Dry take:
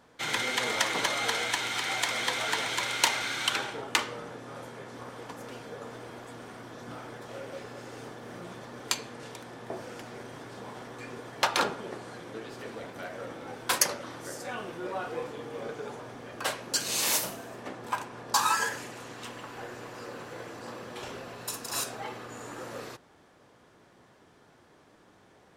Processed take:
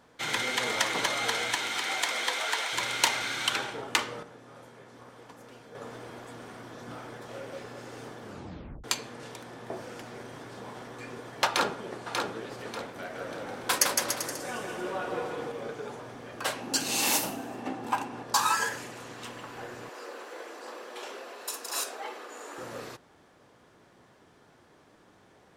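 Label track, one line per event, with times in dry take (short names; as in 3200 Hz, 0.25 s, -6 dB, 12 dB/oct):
1.550000	2.720000	HPF 150 Hz -> 590 Hz
4.230000	5.750000	gain -7.5 dB
8.220000	8.220000	tape stop 0.62 s
11.470000	12.150000	echo throw 0.59 s, feedback 35%, level -4.5 dB
12.990000	15.520000	bouncing-ball echo first gap 0.16 s, each gap 0.8×, echoes 5
16.560000	18.230000	small resonant body resonances 270/790/2700 Hz, height 10 dB, ringing for 30 ms
19.890000	22.580000	HPF 330 Hz 24 dB/oct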